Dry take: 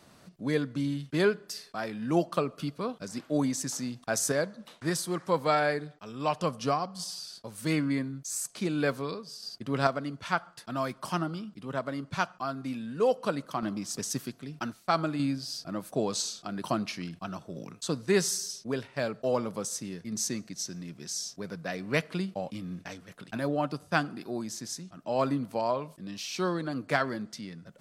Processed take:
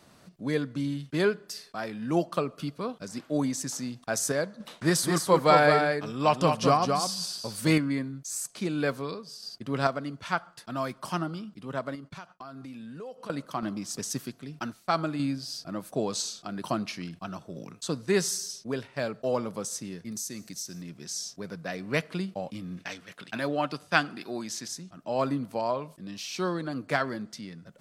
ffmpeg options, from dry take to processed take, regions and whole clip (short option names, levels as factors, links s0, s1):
-filter_complex "[0:a]asettb=1/sr,asplit=3[s0][s1][s2];[s0]atrim=end=4.604[s3];[s1]atrim=start=4.6:end=7.78,asetpts=PTS-STARTPTS,afade=t=in:d=0.004:c=qsin,afade=t=out:st=3.176:d=0.004:c=qsin,aecho=1:1:214:0.562,atrim=end_sample=140238,acontrast=42[s4];[s2]atrim=start=7.776[s5];[s3][s4]acrossfade=d=0.004:c1=hsin:c2=qsin[s6];[s6][s5]acrossfade=d=0.004:c1=qsin:c2=hsin,asettb=1/sr,asplit=3[s7][s8][s9];[s7]atrim=end=11.954[s10];[s8]atrim=start=11.95:end=13.3,asetpts=PTS-STARTPTS,afade=t=in:d=0.004:c=qsin,afade=t=out:st=1.346:d=0.004:c=qsin,agate=range=0.0224:threshold=0.00562:ratio=3:release=100:detection=peak,acompressor=threshold=0.0112:ratio=6:attack=3.2:release=140:knee=1:detection=peak[s11];[s9]atrim=start=13.296[s12];[s10][s11]acrossfade=d=0.004:c1=hsin:c2=qsin[s13];[s13][s12]acrossfade=d=0.004:c1=qsin:c2=hsin,asettb=1/sr,asplit=3[s14][s15][s16];[s14]atrim=end=20.114[s17];[s15]atrim=start=20.11:end=20.82,asetpts=PTS-STARTPTS,afade=t=in:d=0.004:c=qsin,afade=t=out:st=0.706:d=0.004:c=qsin,aemphasis=mode=production:type=50fm,bandreject=f=940:w=24,acompressor=threshold=0.0178:ratio=3:attack=3.2:release=140:knee=1:detection=peak[s18];[s16]atrim=start=20.816[s19];[s17][s18]acrossfade=d=0.004:c1=hsin:c2=qsin[s20];[s20][s19]acrossfade=d=0.004:c1=qsin:c2=hsin,asettb=1/sr,asplit=3[s21][s22][s23];[s21]atrim=end=22.774[s24];[s22]atrim=start=22.77:end=24.68,asetpts=PTS-STARTPTS,afade=t=in:d=0.004:c=qsin,afade=t=out:st=1.906:d=0.004:c=qsin,highpass=f=150:p=1,equalizer=f=2800:t=o:w=2.3:g=7.5[s25];[s23]atrim=start=24.676[s26];[s24][s25]acrossfade=d=0.004:c1=hsin:c2=qsin[s27];[s27][s26]acrossfade=d=0.004:c1=qsin:c2=hsin"